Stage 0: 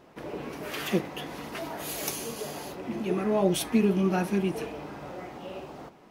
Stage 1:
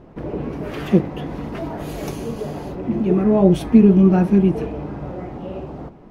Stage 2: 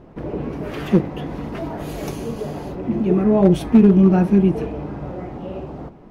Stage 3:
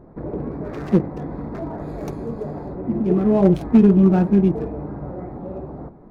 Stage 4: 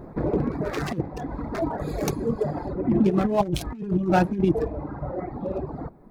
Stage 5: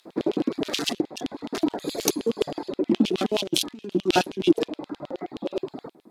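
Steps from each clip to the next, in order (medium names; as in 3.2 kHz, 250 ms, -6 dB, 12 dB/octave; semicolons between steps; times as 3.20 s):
tilt EQ -4 dB/octave; trim +4 dB
hard clipper -5 dBFS, distortion -25 dB
local Wiener filter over 15 samples; trim -1 dB
reverb removal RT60 2 s; treble shelf 2.3 kHz +10 dB; compressor with a negative ratio -21 dBFS, ratio -0.5; trim +1 dB
Chebyshev shaper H 7 -37 dB, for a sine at -8 dBFS; LFO high-pass square 9.5 Hz 300–3100 Hz; high-order bell 6 kHz +11.5 dB 2.5 oct; trim -1 dB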